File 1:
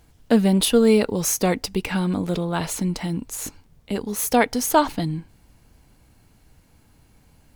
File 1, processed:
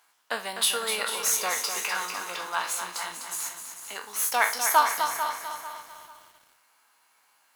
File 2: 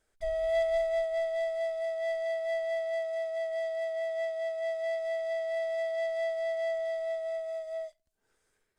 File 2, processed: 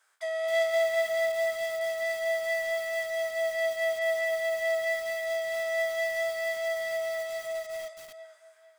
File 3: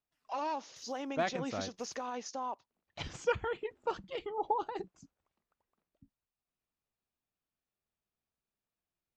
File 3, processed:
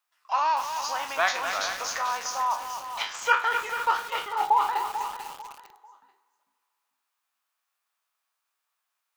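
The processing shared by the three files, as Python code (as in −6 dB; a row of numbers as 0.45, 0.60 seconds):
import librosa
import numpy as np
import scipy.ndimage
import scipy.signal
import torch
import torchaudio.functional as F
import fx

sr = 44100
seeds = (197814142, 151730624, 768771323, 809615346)

p1 = fx.spec_trails(x, sr, decay_s=0.31)
p2 = fx.highpass_res(p1, sr, hz=1100.0, q=2.0)
p3 = fx.high_shelf(p2, sr, hz=6000.0, db=2.0)
p4 = p3 + fx.echo_feedback(p3, sr, ms=444, feedback_pct=30, wet_db=-11.0, dry=0)
p5 = fx.rev_schroeder(p4, sr, rt60_s=2.6, comb_ms=26, drr_db=18.5)
p6 = 10.0 ** (-12.0 / 20.0) * np.tanh(p5 / 10.0 ** (-12.0 / 20.0))
p7 = p5 + F.gain(torch.from_numpy(p6), -11.5).numpy()
p8 = fx.echo_crushed(p7, sr, ms=251, feedback_pct=55, bits=7, wet_db=-7.5)
y = p8 * 10.0 ** (-30 / 20.0) / np.sqrt(np.mean(np.square(p8)))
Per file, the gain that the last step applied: −6.0, +4.0, +6.5 decibels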